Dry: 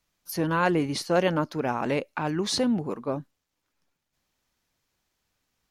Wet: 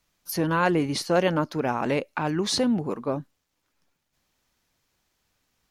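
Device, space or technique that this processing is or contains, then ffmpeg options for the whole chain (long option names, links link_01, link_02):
parallel compression: -filter_complex "[0:a]asplit=2[link_01][link_02];[link_02]acompressor=threshold=-33dB:ratio=6,volume=-5dB[link_03];[link_01][link_03]amix=inputs=2:normalize=0"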